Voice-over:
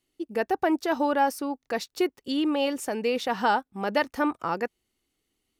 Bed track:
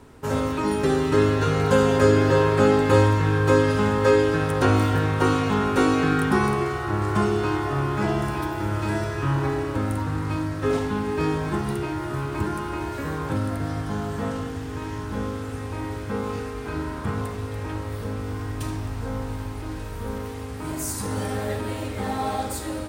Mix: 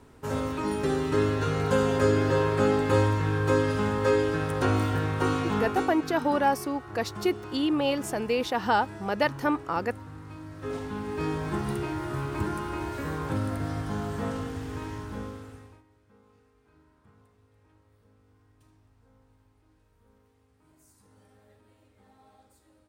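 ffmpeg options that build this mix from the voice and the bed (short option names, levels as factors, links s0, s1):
-filter_complex "[0:a]adelay=5250,volume=0.944[s0];[1:a]volume=2.37,afade=t=out:st=5.59:d=0.35:silence=0.281838,afade=t=in:st=10.38:d=1.32:silence=0.223872,afade=t=out:st=14.73:d=1.1:silence=0.0354813[s1];[s0][s1]amix=inputs=2:normalize=0"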